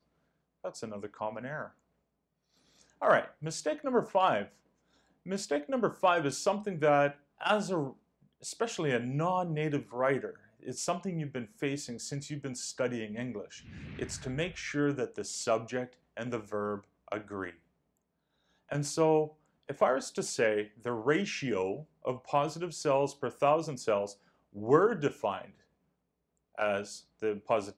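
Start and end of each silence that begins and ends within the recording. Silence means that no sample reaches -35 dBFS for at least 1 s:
1.66–3.02 s
17.50–18.72 s
25.42–26.58 s

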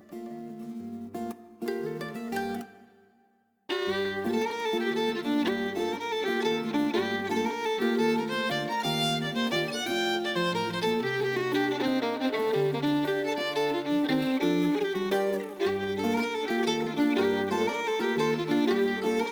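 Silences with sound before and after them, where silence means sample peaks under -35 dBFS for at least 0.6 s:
2.64–3.69 s

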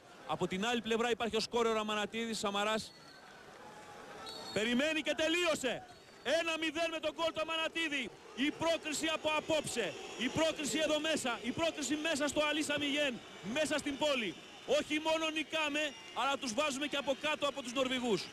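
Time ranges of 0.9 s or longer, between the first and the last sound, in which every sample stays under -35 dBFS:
2.82–4.27 s

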